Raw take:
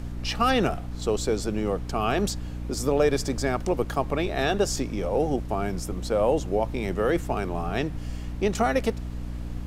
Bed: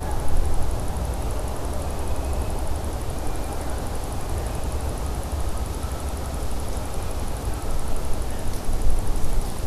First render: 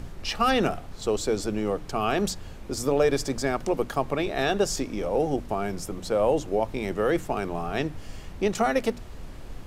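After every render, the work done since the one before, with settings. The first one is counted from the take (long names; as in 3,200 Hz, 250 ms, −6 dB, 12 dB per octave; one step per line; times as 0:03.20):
mains-hum notches 60/120/180/240/300 Hz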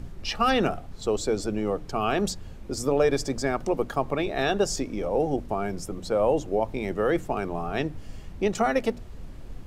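broadband denoise 6 dB, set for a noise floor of −41 dBFS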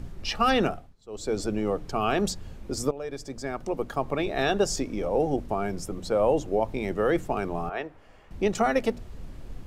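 0:00.62–0:01.40: duck −22.5 dB, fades 0.33 s
0:02.91–0:04.33: fade in, from −18 dB
0:07.69–0:08.31: three-way crossover with the lows and the highs turned down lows −18 dB, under 440 Hz, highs −15 dB, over 2,500 Hz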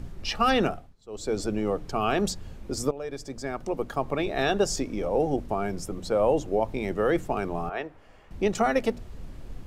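no processing that can be heard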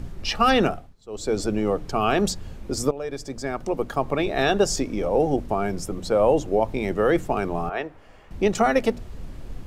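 level +4 dB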